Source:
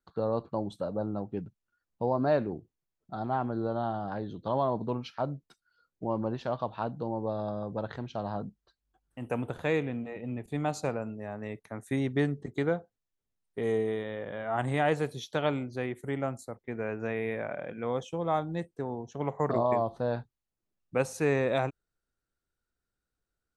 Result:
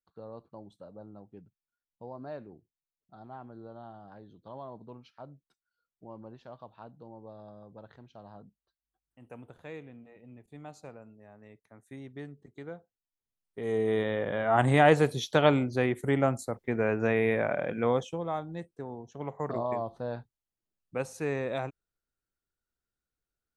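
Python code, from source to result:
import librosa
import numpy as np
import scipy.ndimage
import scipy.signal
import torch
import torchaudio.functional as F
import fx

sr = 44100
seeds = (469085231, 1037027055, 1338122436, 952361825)

y = fx.gain(x, sr, db=fx.line((12.54, -15.0), (13.62, -4.5), (14.0, 6.5), (17.86, 6.5), (18.33, -5.0)))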